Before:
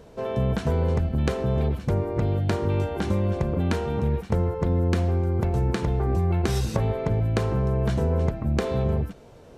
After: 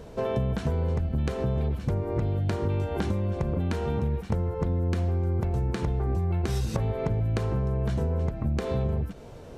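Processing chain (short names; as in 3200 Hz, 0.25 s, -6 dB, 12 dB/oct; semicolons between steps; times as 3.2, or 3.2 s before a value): low shelf 130 Hz +4.5 dB; compressor 6:1, threshold -27 dBFS, peak gain reduction 11 dB; gain +3 dB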